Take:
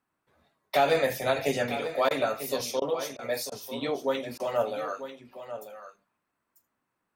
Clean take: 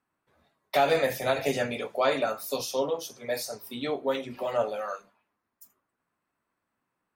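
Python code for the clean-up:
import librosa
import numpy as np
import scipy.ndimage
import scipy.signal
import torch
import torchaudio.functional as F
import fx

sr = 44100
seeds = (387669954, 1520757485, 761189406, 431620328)

y = fx.fix_interpolate(x, sr, at_s=(2.09, 2.8, 3.17, 3.5, 4.38), length_ms=16.0)
y = fx.fix_echo_inverse(y, sr, delay_ms=943, level_db=-11.5)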